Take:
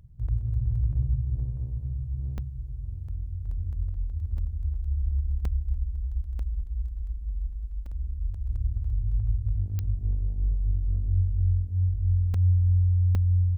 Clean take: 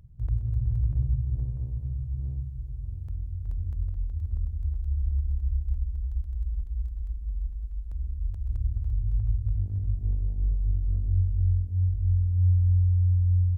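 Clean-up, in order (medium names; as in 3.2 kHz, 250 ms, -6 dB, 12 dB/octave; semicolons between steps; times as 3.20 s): de-click; interpolate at 2.38/4.38/5.45/6.39/7.86/12.34/13.15 s, 3.4 ms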